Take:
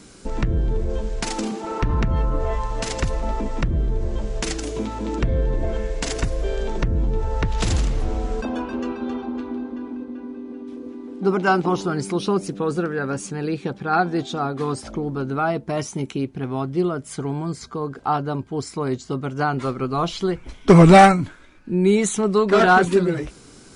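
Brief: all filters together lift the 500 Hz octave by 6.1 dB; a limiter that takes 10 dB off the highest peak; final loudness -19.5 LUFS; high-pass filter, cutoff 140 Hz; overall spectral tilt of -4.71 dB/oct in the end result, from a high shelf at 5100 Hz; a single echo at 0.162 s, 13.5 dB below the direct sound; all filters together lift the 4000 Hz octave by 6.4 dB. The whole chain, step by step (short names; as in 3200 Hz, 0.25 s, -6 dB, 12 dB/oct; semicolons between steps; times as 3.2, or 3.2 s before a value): HPF 140 Hz; bell 500 Hz +8 dB; bell 4000 Hz +4.5 dB; high shelf 5100 Hz +7.5 dB; limiter -5 dBFS; echo 0.162 s -13.5 dB; gain +1 dB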